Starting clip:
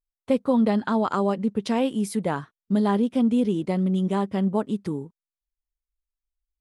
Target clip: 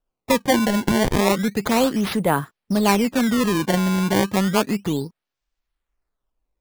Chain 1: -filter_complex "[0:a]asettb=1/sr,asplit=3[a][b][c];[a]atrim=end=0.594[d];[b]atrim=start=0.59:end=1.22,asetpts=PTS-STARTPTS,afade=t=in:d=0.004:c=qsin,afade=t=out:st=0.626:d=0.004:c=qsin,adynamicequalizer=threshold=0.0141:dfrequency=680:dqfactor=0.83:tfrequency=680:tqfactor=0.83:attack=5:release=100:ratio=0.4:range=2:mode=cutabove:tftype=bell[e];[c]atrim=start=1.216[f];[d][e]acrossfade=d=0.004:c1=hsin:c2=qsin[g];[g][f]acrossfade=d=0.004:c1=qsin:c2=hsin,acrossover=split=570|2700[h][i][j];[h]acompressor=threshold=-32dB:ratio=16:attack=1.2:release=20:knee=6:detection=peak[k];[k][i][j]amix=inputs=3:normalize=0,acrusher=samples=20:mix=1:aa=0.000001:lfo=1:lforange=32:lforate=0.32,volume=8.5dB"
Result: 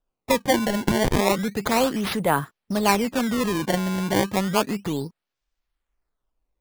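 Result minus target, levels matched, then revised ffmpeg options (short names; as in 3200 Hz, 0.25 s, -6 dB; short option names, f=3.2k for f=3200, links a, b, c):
compressor: peak gain reduction +5.5 dB
-filter_complex "[0:a]asettb=1/sr,asplit=3[a][b][c];[a]atrim=end=0.594[d];[b]atrim=start=0.59:end=1.22,asetpts=PTS-STARTPTS,afade=t=in:d=0.004:c=qsin,afade=t=out:st=0.626:d=0.004:c=qsin,adynamicequalizer=threshold=0.0141:dfrequency=680:dqfactor=0.83:tfrequency=680:tqfactor=0.83:attack=5:release=100:ratio=0.4:range=2:mode=cutabove:tftype=bell[e];[c]atrim=start=1.216[f];[d][e]acrossfade=d=0.004:c1=hsin:c2=qsin[g];[g][f]acrossfade=d=0.004:c1=qsin:c2=hsin,acrossover=split=570|2700[h][i][j];[h]acompressor=threshold=-26dB:ratio=16:attack=1.2:release=20:knee=6:detection=peak[k];[k][i][j]amix=inputs=3:normalize=0,acrusher=samples=20:mix=1:aa=0.000001:lfo=1:lforange=32:lforate=0.32,volume=8.5dB"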